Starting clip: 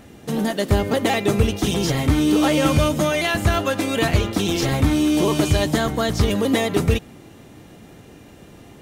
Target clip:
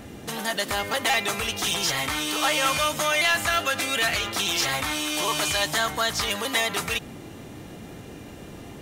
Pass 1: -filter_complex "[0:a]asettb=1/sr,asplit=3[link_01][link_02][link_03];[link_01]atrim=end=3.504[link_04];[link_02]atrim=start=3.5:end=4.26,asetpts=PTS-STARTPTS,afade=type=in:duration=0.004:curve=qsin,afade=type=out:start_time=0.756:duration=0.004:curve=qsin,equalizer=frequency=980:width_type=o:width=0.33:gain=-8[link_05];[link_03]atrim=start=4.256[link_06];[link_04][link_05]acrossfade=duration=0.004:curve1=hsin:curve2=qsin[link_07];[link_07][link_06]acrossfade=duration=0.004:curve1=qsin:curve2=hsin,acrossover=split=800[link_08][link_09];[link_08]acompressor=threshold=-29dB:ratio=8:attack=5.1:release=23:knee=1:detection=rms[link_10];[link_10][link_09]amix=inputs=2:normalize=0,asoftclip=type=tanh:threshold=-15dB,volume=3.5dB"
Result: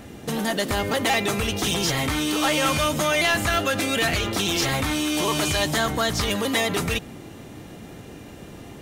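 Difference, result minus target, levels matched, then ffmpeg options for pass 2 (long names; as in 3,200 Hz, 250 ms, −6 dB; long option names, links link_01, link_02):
downward compressor: peak gain reduction −10 dB
-filter_complex "[0:a]asettb=1/sr,asplit=3[link_01][link_02][link_03];[link_01]atrim=end=3.504[link_04];[link_02]atrim=start=3.5:end=4.26,asetpts=PTS-STARTPTS,afade=type=in:duration=0.004:curve=qsin,afade=type=out:start_time=0.756:duration=0.004:curve=qsin,equalizer=frequency=980:width_type=o:width=0.33:gain=-8[link_05];[link_03]atrim=start=4.256[link_06];[link_04][link_05]acrossfade=duration=0.004:curve1=hsin:curve2=qsin[link_07];[link_07][link_06]acrossfade=duration=0.004:curve1=qsin:curve2=hsin,acrossover=split=800[link_08][link_09];[link_08]acompressor=threshold=-40.5dB:ratio=8:attack=5.1:release=23:knee=1:detection=rms[link_10];[link_10][link_09]amix=inputs=2:normalize=0,asoftclip=type=tanh:threshold=-15dB,volume=3.5dB"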